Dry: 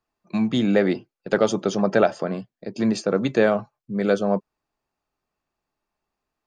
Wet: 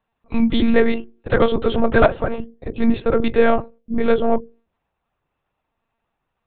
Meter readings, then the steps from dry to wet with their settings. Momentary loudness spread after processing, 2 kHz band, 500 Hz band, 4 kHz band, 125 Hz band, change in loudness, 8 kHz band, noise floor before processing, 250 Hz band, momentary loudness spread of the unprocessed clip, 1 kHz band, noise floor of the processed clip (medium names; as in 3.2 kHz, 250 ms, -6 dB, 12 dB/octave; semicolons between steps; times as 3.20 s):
11 LU, +4.5 dB, +3.0 dB, +2.5 dB, +1.5 dB, +3.5 dB, under -35 dB, -84 dBFS, +3.0 dB, 10 LU, +5.0 dB, -78 dBFS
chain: hum notches 60/120/180/240/300/360/420/480/540 Hz; in parallel at -7 dB: saturation -19.5 dBFS, distortion -9 dB; on the sum: monotone LPC vocoder at 8 kHz 230 Hz; trim +3.5 dB